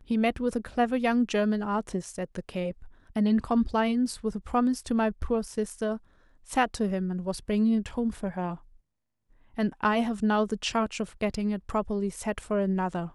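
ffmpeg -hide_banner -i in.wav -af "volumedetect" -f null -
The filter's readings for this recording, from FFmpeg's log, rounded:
mean_volume: -28.2 dB
max_volume: -11.6 dB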